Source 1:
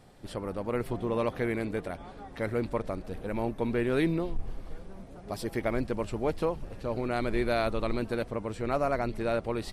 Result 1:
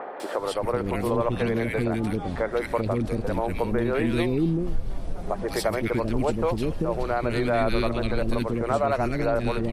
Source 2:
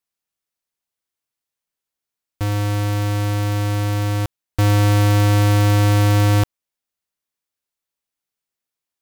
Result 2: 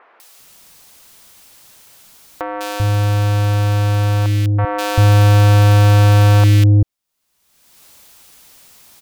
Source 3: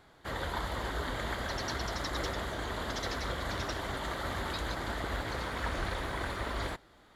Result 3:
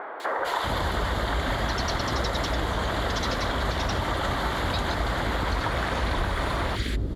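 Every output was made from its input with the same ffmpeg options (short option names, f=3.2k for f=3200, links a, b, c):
-filter_complex "[0:a]acrossover=split=390|1800[a][b][c];[c]adelay=200[d];[a]adelay=390[e];[e][b][d]amix=inputs=3:normalize=0,acompressor=mode=upward:threshold=-24dB:ratio=2.5,adynamicequalizer=threshold=0.00562:dfrequency=4500:dqfactor=0.7:tfrequency=4500:tqfactor=0.7:attack=5:release=100:ratio=0.375:range=3:mode=cutabove:tftype=highshelf,volume=5.5dB"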